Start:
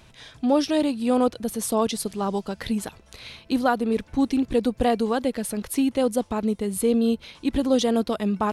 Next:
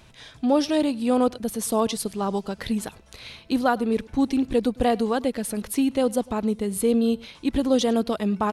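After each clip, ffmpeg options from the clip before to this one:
-af "aecho=1:1:103:0.0668"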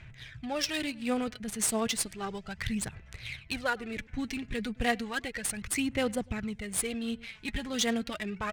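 -af "aphaser=in_gain=1:out_gain=1:delay=4.8:decay=0.54:speed=0.33:type=sinusoidal,equalizer=f=125:t=o:w=1:g=7,equalizer=f=250:t=o:w=1:g=-10,equalizer=f=500:t=o:w=1:g=-8,equalizer=f=1k:t=o:w=1:g=-10,equalizer=f=2k:t=o:w=1:g=11,equalizer=f=4k:t=o:w=1:g=-3,equalizer=f=8k:t=o:w=1:g=10,adynamicsmooth=sensitivity=5.5:basefreq=2.4k,volume=-4dB"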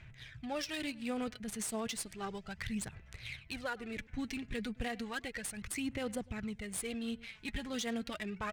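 -af "alimiter=limit=-23.5dB:level=0:latency=1:release=97,volume=-4.5dB"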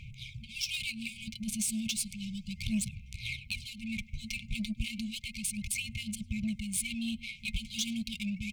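-filter_complex "[0:a]afftfilt=real='re*(1-between(b*sr/4096,230,2100))':imag='im*(1-between(b*sr/4096,230,2100))':win_size=4096:overlap=0.75,asplit=2[a][b];[b]asoftclip=type=tanh:threshold=-37dB,volume=-10dB[c];[a][c]amix=inputs=2:normalize=0,volume=5.5dB"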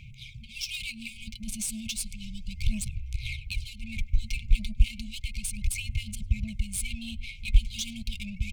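-filter_complex "[0:a]asubboost=boost=12:cutoff=63,acrossover=split=5200[a][b];[b]acrusher=bits=5:mode=log:mix=0:aa=0.000001[c];[a][c]amix=inputs=2:normalize=0"

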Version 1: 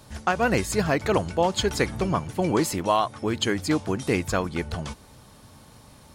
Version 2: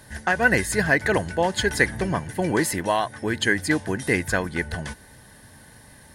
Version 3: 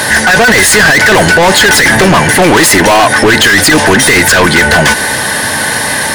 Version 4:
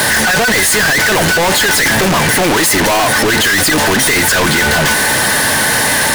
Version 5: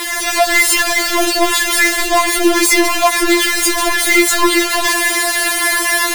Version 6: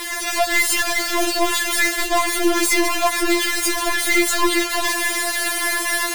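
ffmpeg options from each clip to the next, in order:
-af "superequalizer=10b=0.631:11b=3.55:16b=2.24"
-filter_complex "[0:a]asplit=2[a][b];[b]highpass=f=720:p=1,volume=36dB,asoftclip=type=tanh:threshold=-4dB[c];[a][c]amix=inputs=2:normalize=0,lowpass=f=6.3k:p=1,volume=-6dB,alimiter=level_in=12.5dB:limit=-1dB:release=50:level=0:latency=1,volume=-1dB"
-af "asoftclip=type=hard:threshold=-17dB,volume=6dB"
-af "dynaudnorm=f=150:g=3:m=5.5dB,afftfilt=real='re*4*eq(mod(b,16),0)':imag='im*4*eq(mod(b,16),0)':win_size=2048:overlap=0.75,volume=-5dB"
-af "aeval=exprs='0.891*(cos(1*acos(clip(val(0)/0.891,-1,1)))-cos(1*PI/2))+0.0794*(cos(4*acos(clip(val(0)/0.891,-1,1)))-cos(4*PI/2))+0.0178*(cos(8*acos(clip(val(0)/0.891,-1,1)))-cos(8*PI/2))':c=same,volume=-6.5dB"

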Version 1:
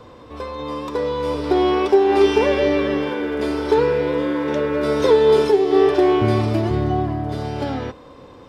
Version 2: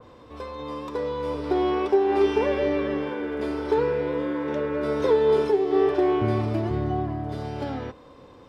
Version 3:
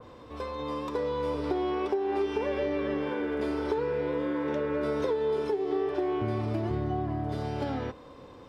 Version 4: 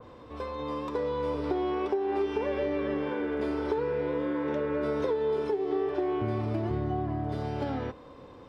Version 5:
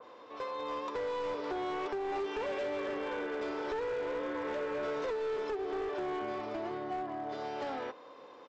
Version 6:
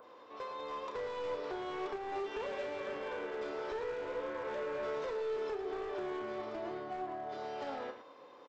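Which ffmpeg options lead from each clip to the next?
-af "adynamicequalizer=threshold=0.0126:dfrequency=2800:dqfactor=0.7:tfrequency=2800:tqfactor=0.7:attack=5:release=100:ratio=0.375:range=3.5:mode=cutabove:tftype=highshelf,volume=-6dB"
-af "acompressor=threshold=-26dB:ratio=6"
-af "highshelf=f=4.6k:g=-6.5"
-af "highpass=480,aresample=16000,volume=32dB,asoftclip=hard,volume=-32dB,aresample=44100"
-af "acompressor=mode=upward:threshold=-54dB:ratio=2.5,aecho=1:1:32.07|110.8:0.355|0.316,volume=-4dB"

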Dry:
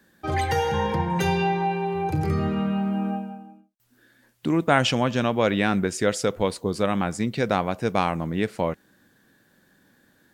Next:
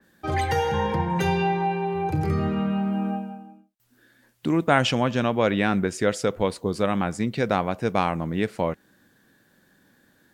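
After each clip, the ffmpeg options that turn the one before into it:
-af "adynamicequalizer=threshold=0.01:dfrequency=3300:dqfactor=0.7:tfrequency=3300:tqfactor=0.7:attack=5:release=100:ratio=0.375:range=2:mode=cutabove:tftype=highshelf"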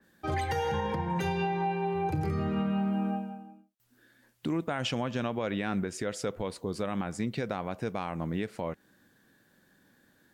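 -af "alimiter=limit=-17.5dB:level=0:latency=1:release=136,volume=-4dB"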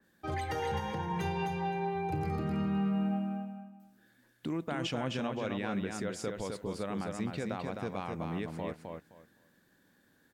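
-af "aecho=1:1:259|518|777:0.596|0.113|0.0215,volume=-4.5dB"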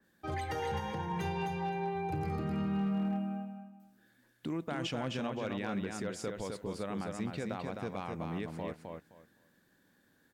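-af "volume=26dB,asoftclip=hard,volume=-26dB,volume=-1.5dB"

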